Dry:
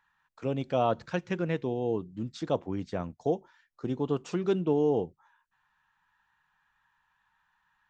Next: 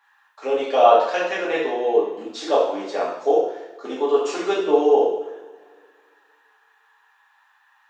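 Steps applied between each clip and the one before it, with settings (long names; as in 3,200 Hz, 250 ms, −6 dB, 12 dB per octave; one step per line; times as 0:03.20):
high-pass filter 400 Hz 24 dB per octave
coupled-rooms reverb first 0.72 s, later 2.1 s, from −18 dB, DRR −8 dB
level +5 dB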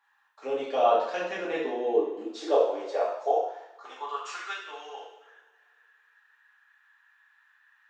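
high-pass filter sweep 130 Hz → 1,600 Hz, 0:00.98–0:04.61
level −9 dB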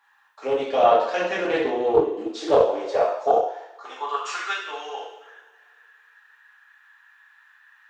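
in parallel at +1 dB: speech leveller within 3 dB 0.5 s
on the sum: highs frequency-modulated by the lows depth 0.23 ms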